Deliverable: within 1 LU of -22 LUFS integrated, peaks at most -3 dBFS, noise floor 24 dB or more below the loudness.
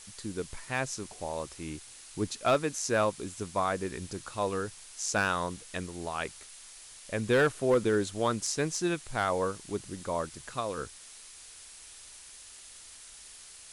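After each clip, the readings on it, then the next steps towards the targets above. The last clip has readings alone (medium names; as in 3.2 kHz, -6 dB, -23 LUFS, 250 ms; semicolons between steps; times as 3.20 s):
clipped samples 0.2%; clipping level -18.0 dBFS; noise floor -50 dBFS; noise floor target -56 dBFS; loudness -31.5 LUFS; peak level -18.0 dBFS; loudness target -22.0 LUFS
-> clip repair -18 dBFS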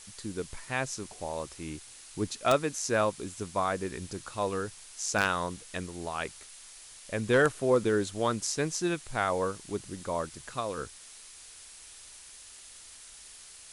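clipped samples 0.0%; noise floor -50 dBFS; noise floor target -56 dBFS
-> noise reduction 6 dB, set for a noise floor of -50 dBFS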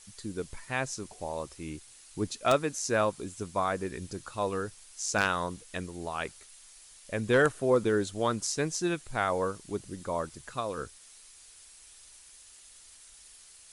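noise floor -54 dBFS; noise floor target -56 dBFS
-> noise reduction 6 dB, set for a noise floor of -54 dBFS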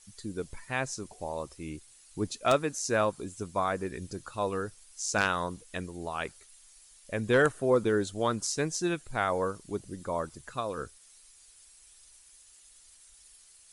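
noise floor -57 dBFS; loudness -31.5 LUFS; peak level -9.0 dBFS; loudness target -22.0 LUFS
-> trim +9.5 dB; peak limiter -3 dBFS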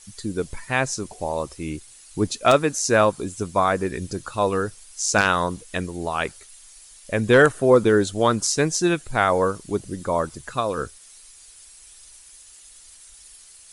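loudness -22.0 LUFS; peak level -3.0 dBFS; noise floor -48 dBFS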